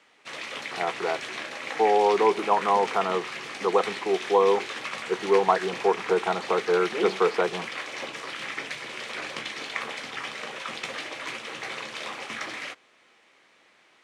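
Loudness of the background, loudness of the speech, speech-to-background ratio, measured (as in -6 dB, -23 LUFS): -34.0 LUFS, -25.0 LUFS, 9.0 dB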